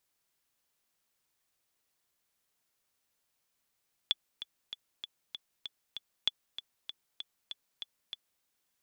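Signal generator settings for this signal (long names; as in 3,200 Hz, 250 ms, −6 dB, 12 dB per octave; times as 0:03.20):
click track 194 BPM, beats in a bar 7, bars 2, 3,440 Hz, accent 13 dB −13.5 dBFS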